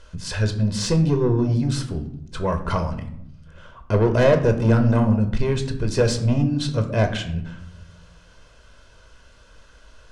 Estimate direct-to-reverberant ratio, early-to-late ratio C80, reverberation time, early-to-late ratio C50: 6.5 dB, 14.5 dB, 0.80 s, 11.5 dB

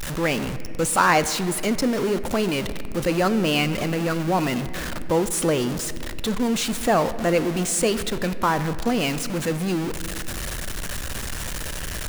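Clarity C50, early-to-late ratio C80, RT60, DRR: 13.0 dB, 14.0 dB, 2.7 s, 12.0 dB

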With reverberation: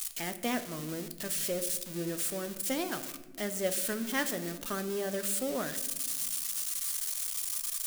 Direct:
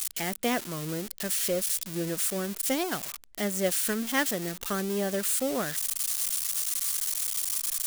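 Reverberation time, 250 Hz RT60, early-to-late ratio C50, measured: 1.1 s, 2.2 s, 13.0 dB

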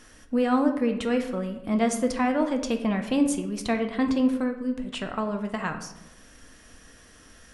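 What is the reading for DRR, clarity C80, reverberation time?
5.0 dB, 11.5 dB, 0.95 s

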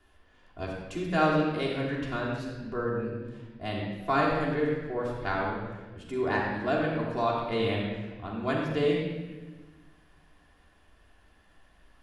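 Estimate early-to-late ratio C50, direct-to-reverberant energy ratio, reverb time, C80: 1.0 dB, −5.0 dB, 1.3 s, 2.5 dB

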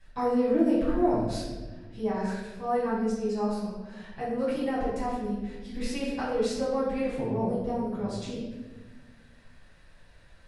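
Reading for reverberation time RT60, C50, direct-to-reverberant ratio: 1.3 s, 0.5 dB, −11.5 dB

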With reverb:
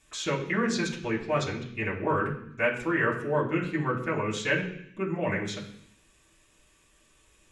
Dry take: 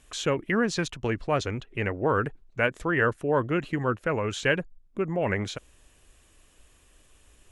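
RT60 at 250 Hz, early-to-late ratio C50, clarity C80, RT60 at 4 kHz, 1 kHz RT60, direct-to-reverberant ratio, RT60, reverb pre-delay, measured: 0.85 s, 8.0 dB, 11.0 dB, 0.80 s, 0.65 s, −7.0 dB, 0.65 s, 3 ms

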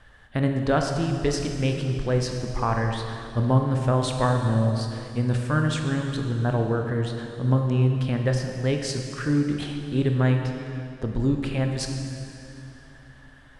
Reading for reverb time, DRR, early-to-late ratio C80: 2.9 s, 3.0 dB, 5.0 dB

